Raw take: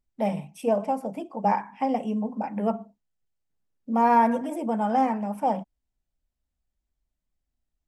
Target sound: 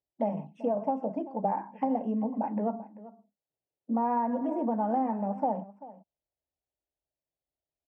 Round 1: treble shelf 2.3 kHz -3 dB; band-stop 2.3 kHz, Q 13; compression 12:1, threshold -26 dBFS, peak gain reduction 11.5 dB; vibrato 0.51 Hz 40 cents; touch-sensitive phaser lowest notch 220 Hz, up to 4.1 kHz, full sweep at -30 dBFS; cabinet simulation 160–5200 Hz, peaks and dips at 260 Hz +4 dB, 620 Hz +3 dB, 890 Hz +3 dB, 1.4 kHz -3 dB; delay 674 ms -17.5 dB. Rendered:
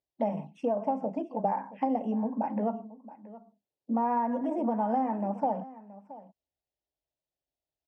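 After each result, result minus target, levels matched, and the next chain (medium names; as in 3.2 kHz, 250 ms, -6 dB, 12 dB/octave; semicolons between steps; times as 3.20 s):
echo 285 ms late; 4 kHz band +5.0 dB
treble shelf 2.3 kHz -3 dB; band-stop 2.3 kHz, Q 13; compression 12:1, threshold -26 dBFS, peak gain reduction 11.5 dB; vibrato 0.51 Hz 40 cents; touch-sensitive phaser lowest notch 220 Hz, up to 4.1 kHz, full sweep at -30 dBFS; cabinet simulation 160–5200 Hz, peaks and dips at 260 Hz +4 dB, 620 Hz +3 dB, 890 Hz +3 dB, 1.4 kHz -3 dB; delay 389 ms -17.5 dB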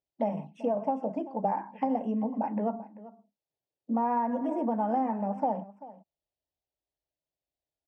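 4 kHz band +5.0 dB
treble shelf 2.3 kHz -11.5 dB; band-stop 2.3 kHz, Q 13; compression 12:1, threshold -26 dBFS, peak gain reduction 10.5 dB; vibrato 0.51 Hz 40 cents; touch-sensitive phaser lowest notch 220 Hz, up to 4.1 kHz, full sweep at -30 dBFS; cabinet simulation 160–5200 Hz, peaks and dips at 260 Hz +4 dB, 620 Hz +3 dB, 890 Hz +3 dB, 1.4 kHz -3 dB; delay 389 ms -17.5 dB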